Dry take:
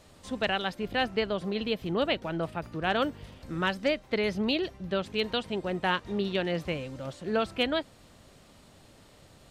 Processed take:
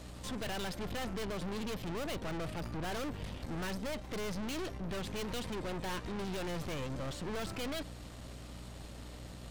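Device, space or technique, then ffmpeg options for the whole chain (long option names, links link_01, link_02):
valve amplifier with mains hum: -af "aeval=exprs='(tanh(178*val(0)+0.65)-tanh(0.65))/178':channel_layout=same,aeval=exprs='val(0)+0.00178*(sin(2*PI*60*n/s)+sin(2*PI*2*60*n/s)/2+sin(2*PI*3*60*n/s)/3+sin(2*PI*4*60*n/s)/4+sin(2*PI*5*60*n/s)/5)':channel_layout=same,volume=7.5dB"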